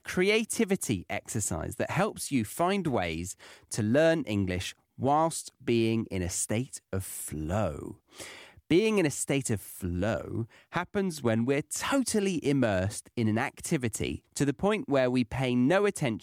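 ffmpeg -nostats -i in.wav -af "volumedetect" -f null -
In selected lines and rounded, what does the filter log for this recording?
mean_volume: -29.1 dB
max_volume: -13.5 dB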